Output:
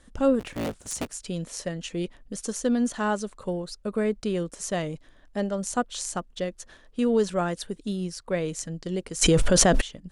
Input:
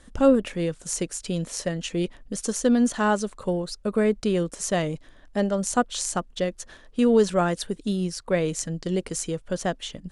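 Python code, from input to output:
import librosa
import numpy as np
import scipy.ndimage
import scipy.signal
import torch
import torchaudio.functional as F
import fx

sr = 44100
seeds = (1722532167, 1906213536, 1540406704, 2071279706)

y = fx.cycle_switch(x, sr, every=3, mode='inverted', at=(0.39, 1.11), fade=0.02)
y = fx.env_flatten(y, sr, amount_pct=100, at=(9.21, 9.8), fade=0.02)
y = F.gain(torch.from_numpy(y), -4.0).numpy()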